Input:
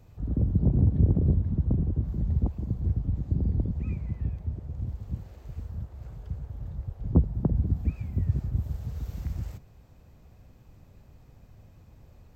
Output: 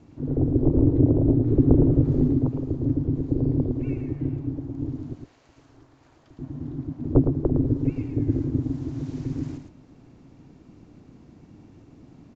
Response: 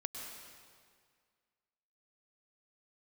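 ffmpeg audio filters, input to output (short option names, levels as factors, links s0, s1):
-filter_complex "[0:a]asettb=1/sr,asplit=3[s0][s1][s2];[s0]atrim=end=1.474[s3];[s1]atrim=start=1.47:end=2.28,asetpts=PTS-STARTPTS,afade=t=in:d=0.004:c=qsin,afade=t=out:st=0.806:d=0.004:c=qsin,acontrast=27[s4];[s2]atrim=start=2.276[s5];[s3][s4]acrossfade=d=0.004:c1=hsin:c2=qsin[s6];[s6][s5]acrossfade=d=0.004:c1=qsin:c2=hsin,asettb=1/sr,asplit=3[s7][s8][s9];[s7]atrim=end=5.134[s10];[s8]atrim=start=5.13:end=6.39,asetpts=PTS-STARTPTS,afade=t=in:d=0.004:c=qsin,afade=t=out:st=1.256:d=0.004:c=qsin,highpass=f=1000:p=1[s11];[s9]atrim=start=6.386[s12];[s10][s11]acrossfade=d=0.004:c1=hsin:c2=qsin[s13];[s13][s12]acrossfade=d=0.004:c1=qsin:c2=hsin,aeval=exprs='val(0)*sin(2*PI*200*n/s)':c=same,aecho=1:1:111:0.473,volume=1.78" -ar 16000 -c:a libvorbis -b:a 96k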